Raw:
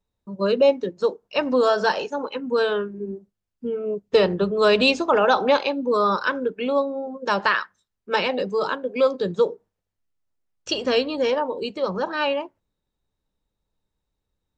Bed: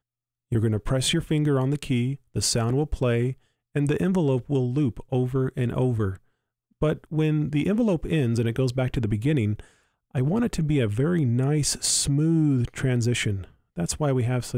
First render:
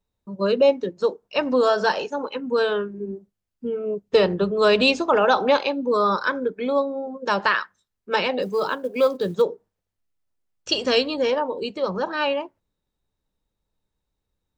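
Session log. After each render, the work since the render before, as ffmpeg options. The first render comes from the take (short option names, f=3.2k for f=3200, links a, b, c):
-filter_complex "[0:a]asettb=1/sr,asplit=3[a][b][c];[a]atrim=end=5.944[d];[b]atrim=start=5.94:end=6.93,asetpts=PTS-STARTPTS,afade=t=in:d=0.004:c=qsin,afade=t=out:st=0.986:d=0.004:c=qsin,asuperstop=centerf=2800:order=4:qfactor=5.2[e];[c]atrim=start=6.926[f];[d][e]acrossfade=d=0.004:c1=hsin:c2=qsin[g];[g][f]acrossfade=d=0.004:c1=qsin:c2=hsin,asettb=1/sr,asplit=3[h][i][j];[h]atrim=end=8.424[k];[i]atrim=start=8.42:end=9.42,asetpts=PTS-STARTPTS,afade=t=in:d=0.004:c=qsin,afade=t=out:st=0.996:d=0.004:c=qsin,acrusher=bits=8:mode=log:mix=0:aa=0.000001[l];[j]atrim=start=9.416[m];[k][l]acrossfade=d=0.004:c1=hsin:c2=qsin[n];[n][m]acrossfade=d=0.004:c1=qsin:c2=hsin,asettb=1/sr,asplit=3[o][p][q];[o]atrim=end=10.724[r];[p]atrim=start=10.72:end=11.14,asetpts=PTS-STARTPTS,afade=t=in:d=0.004:c=qsin,afade=t=out:st=0.416:d=0.004:c=qsin,highshelf=f=3.8k:g=9[s];[q]atrim=start=11.136[t];[r][s]acrossfade=d=0.004:c1=hsin:c2=qsin[u];[u][t]acrossfade=d=0.004:c1=qsin:c2=hsin"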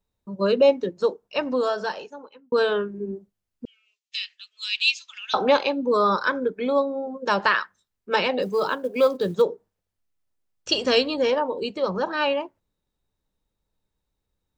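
-filter_complex "[0:a]asettb=1/sr,asplit=3[a][b][c];[a]atrim=end=3.654[d];[b]atrim=start=3.65:end=5.34,asetpts=PTS-STARTPTS,afade=t=in:d=0.004:c=qsin,afade=t=out:st=1.686:d=0.004:c=qsin,asuperpass=centerf=4400:order=8:qfactor=0.81[e];[c]atrim=start=5.336[f];[d][e]acrossfade=d=0.004:c1=hsin:c2=qsin[g];[g][f]acrossfade=d=0.004:c1=qsin:c2=hsin,asplit=2[h][i];[h]atrim=end=2.52,asetpts=PTS-STARTPTS,afade=t=out:st=0.97:d=1.55[j];[i]atrim=start=2.52,asetpts=PTS-STARTPTS,afade=t=in:d=0.004:c=hsin[k];[j][k]concat=n=2:v=0:a=1"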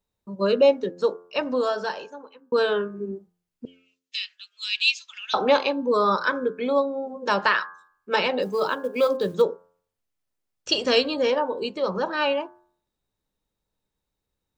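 -af "lowshelf=f=90:g=-6.5,bandreject=f=88.05:t=h:w=4,bandreject=f=176.1:t=h:w=4,bandreject=f=264.15:t=h:w=4,bandreject=f=352.2:t=h:w=4,bandreject=f=440.25:t=h:w=4,bandreject=f=528.3:t=h:w=4,bandreject=f=616.35:t=h:w=4,bandreject=f=704.4:t=h:w=4,bandreject=f=792.45:t=h:w=4,bandreject=f=880.5:t=h:w=4,bandreject=f=968.55:t=h:w=4,bandreject=f=1.0566k:t=h:w=4,bandreject=f=1.14465k:t=h:w=4,bandreject=f=1.2327k:t=h:w=4,bandreject=f=1.32075k:t=h:w=4,bandreject=f=1.4088k:t=h:w=4,bandreject=f=1.49685k:t=h:w=4,bandreject=f=1.5849k:t=h:w=4,bandreject=f=1.67295k:t=h:w=4"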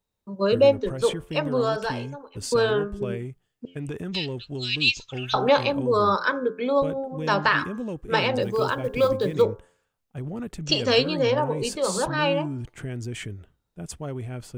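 -filter_complex "[1:a]volume=-9.5dB[a];[0:a][a]amix=inputs=2:normalize=0"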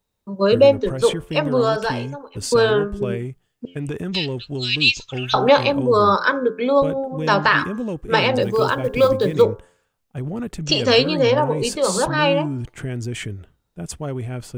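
-af "volume=5.5dB,alimiter=limit=-3dB:level=0:latency=1"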